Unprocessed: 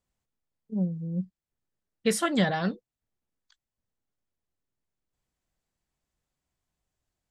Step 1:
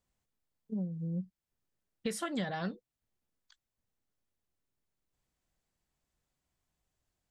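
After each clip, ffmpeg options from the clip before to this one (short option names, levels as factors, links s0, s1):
-af "acompressor=threshold=0.02:ratio=4"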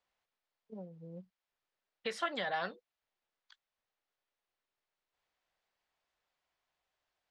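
-filter_complex "[0:a]acrossover=split=480 5000:gain=0.1 1 0.0631[s0][s1][s2];[s0][s1][s2]amix=inputs=3:normalize=0,volume=1.68"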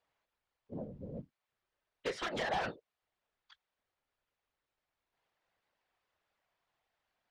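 -af "aeval=exprs='0.0237*(abs(mod(val(0)/0.0237+3,4)-2)-1)':c=same,afftfilt=real='hypot(re,im)*cos(2*PI*random(0))':imag='hypot(re,im)*sin(2*PI*random(1))':win_size=512:overlap=0.75,aemphasis=mode=reproduction:type=50fm,volume=2.99"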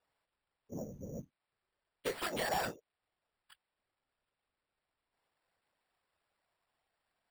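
-af "acrusher=samples=7:mix=1:aa=0.000001"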